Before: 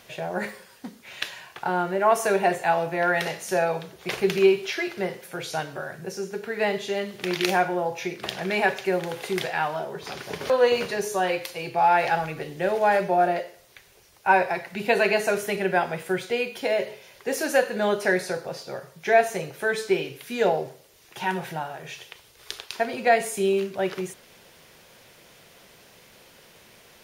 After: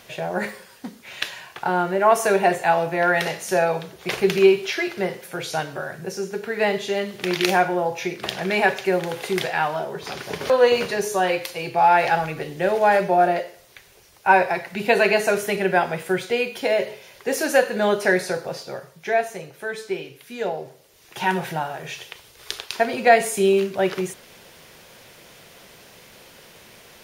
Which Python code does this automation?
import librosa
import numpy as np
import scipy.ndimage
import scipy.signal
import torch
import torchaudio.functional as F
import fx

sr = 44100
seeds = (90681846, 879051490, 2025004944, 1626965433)

y = fx.gain(x, sr, db=fx.line((18.56, 3.5), (19.36, -4.5), (20.56, -4.5), (21.21, 5.0)))